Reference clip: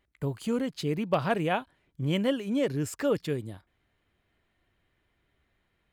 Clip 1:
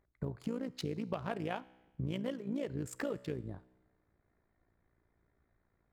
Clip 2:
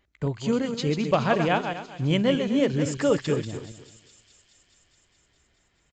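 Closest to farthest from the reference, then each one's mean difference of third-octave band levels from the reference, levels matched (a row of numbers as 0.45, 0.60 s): 1, 2; 5.5, 7.0 dB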